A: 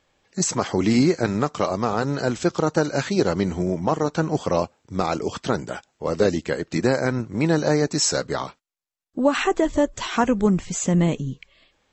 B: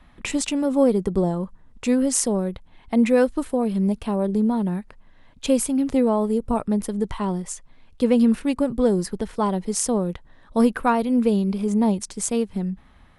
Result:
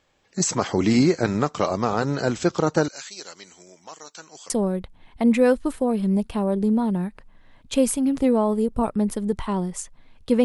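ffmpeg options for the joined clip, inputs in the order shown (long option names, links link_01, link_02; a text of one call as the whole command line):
ffmpeg -i cue0.wav -i cue1.wav -filter_complex "[0:a]asettb=1/sr,asplit=3[link_01][link_02][link_03];[link_01]atrim=end=2.884[link_04];[link_02]atrim=start=2.88:end=4.5,asetpts=PTS-STARTPTS,afade=type=in:duration=0.004:curve=qsin,afade=type=out:start_time=1.616:duration=0.004:curve=qsin,aderivative[link_05];[link_03]atrim=start=4.496[link_06];[link_04][link_05]acrossfade=duration=0.004:curve1=hsin:curve2=qsin[link_07];[link_07][link_06]acrossfade=duration=0.004:curve1=qsin:curve2=hsin,apad=whole_dur=10.44,atrim=end=10.44,atrim=end=4.502[link_08];[1:a]atrim=start=2.218:end=8.16[link_09];[link_08][link_09]acrossfade=duration=0.004:curve1=hsin:curve2=hsin" out.wav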